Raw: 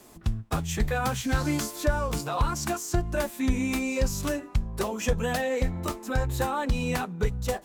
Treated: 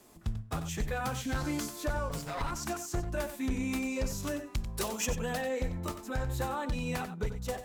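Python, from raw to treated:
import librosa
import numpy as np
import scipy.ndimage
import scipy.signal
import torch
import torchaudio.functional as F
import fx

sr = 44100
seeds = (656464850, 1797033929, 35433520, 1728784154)

y = fx.lower_of_two(x, sr, delay_ms=7.2, at=(2.09, 2.51))
y = fx.high_shelf(y, sr, hz=2300.0, db=11.0, at=(4.45, 5.05), fade=0.02)
y = np.clip(y, -10.0 ** (-19.5 / 20.0), 10.0 ** (-19.5 / 20.0))
y = y + 10.0 ** (-10.5 / 20.0) * np.pad(y, (int(92 * sr / 1000.0), 0))[:len(y)]
y = y * 10.0 ** (-6.5 / 20.0)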